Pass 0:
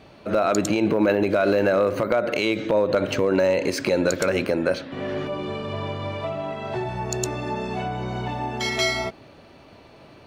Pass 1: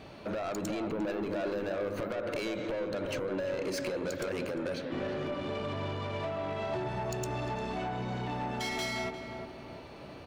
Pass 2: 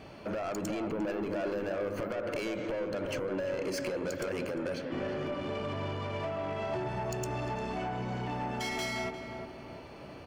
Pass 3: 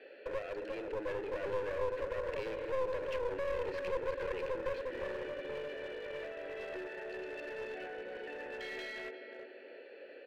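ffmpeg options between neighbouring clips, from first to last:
ffmpeg -i in.wav -filter_complex "[0:a]acompressor=threshold=-30dB:ratio=3,asoftclip=type=tanh:threshold=-31dB,asplit=2[link_01][link_02];[link_02]adelay=351,lowpass=frequency=1100:poles=1,volume=-4.5dB,asplit=2[link_03][link_04];[link_04]adelay=351,lowpass=frequency=1100:poles=1,volume=0.51,asplit=2[link_05][link_06];[link_06]adelay=351,lowpass=frequency=1100:poles=1,volume=0.51,asplit=2[link_07][link_08];[link_08]adelay=351,lowpass=frequency=1100:poles=1,volume=0.51,asplit=2[link_09][link_10];[link_10]adelay=351,lowpass=frequency=1100:poles=1,volume=0.51,asplit=2[link_11][link_12];[link_12]adelay=351,lowpass=frequency=1100:poles=1,volume=0.51,asplit=2[link_13][link_14];[link_14]adelay=351,lowpass=frequency=1100:poles=1,volume=0.51[link_15];[link_01][link_03][link_05][link_07][link_09][link_11][link_13][link_15]amix=inputs=8:normalize=0" out.wav
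ffmpeg -i in.wav -af "bandreject=frequency=3800:width=6.1" out.wav
ffmpeg -i in.wav -filter_complex "[0:a]asplit=3[link_01][link_02][link_03];[link_01]bandpass=frequency=530:width_type=q:width=8,volume=0dB[link_04];[link_02]bandpass=frequency=1840:width_type=q:width=8,volume=-6dB[link_05];[link_03]bandpass=frequency=2480:width_type=q:width=8,volume=-9dB[link_06];[link_04][link_05][link_06]amix=inputs=3:normalize=0,highpass=frequency=260:width=0.5412,highpass=frequency=260:width=1.3066,equalizer=frequency=410:width_type=q:width=4:gain=5,equalizer=frequency=630:width_type=q:width=4:gain=-7,equalizer=frequency=1500:width_type=q:width=4:gain=9,equalizer=frequency=4100:width_type=q:width=4:gain=8,lowpass=frequency=4400:width=0.5412,lowpass=frequency=4400:width=1.3066,aeval=exprs='clip(val(0),-1,0.00473)':channel_layout=same,volume=6.5dB" out.wav

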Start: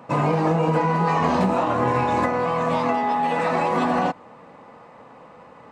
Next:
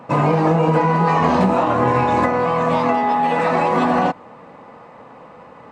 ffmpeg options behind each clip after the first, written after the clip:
ffmpeg -i in.wav -af "highshelf=frequency=4800:gain=-5,volume=4.5dB" out.wav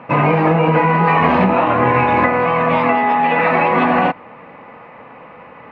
ffmpeg -i in.wav -af "lowpass=frequency=2400:width_type=q:width=2.7,volume=1.5dB" out.wav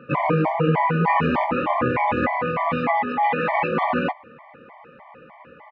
ffmpeg -i in.wav -filter_complex "[0:a]asplit=2[link_01][link_02];[link_02]adelay=13,volume=-11.5dB[link_03];[link_01][link_03]amix=inputs=2:normalize=0,afftfilt=real='re*gt(sin(2*PI*3.3*pts/sr)*(1-2*mod(floor(b*sr/1024/600),2)),0)':imag='im*gt(sin(2*PI*3.3*pts/sr)*(1-2*mod(floor(b*sr/1024/600),2)),0)':win_size=1024:overlap=0.75,volume=-4.5dB" out.wav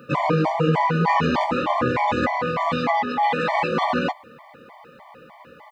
ffmpeg -i in.wav -af "aexciter=amount=6.9:drive=6.1:freq=3600" out.wav

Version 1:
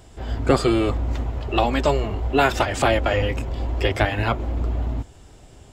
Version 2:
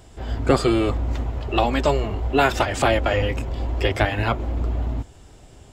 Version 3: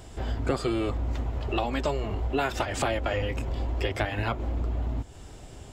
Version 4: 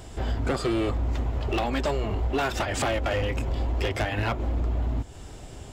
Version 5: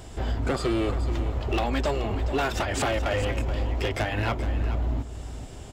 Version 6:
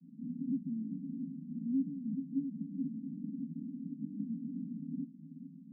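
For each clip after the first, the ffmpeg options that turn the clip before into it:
ffmpeg -i in.wav -af anull out.wav
ffmpeg -i in.wav -af "acompressor=threshold=-31dB:ratio=2.5,volume=2dB" out.wav
ffmpeg -i in.wav -af "volume=23.5dB,asoftclip=hard,volume=-23.5dB,volume=3dB" out.wav
ffmpeg -i in.wav -af "aecho=1:1:427:0.266" out.wav
ffmpeg -i in.wav -af "asuperpass=centerf=210:order=20:qfactor=1.6" out.wav

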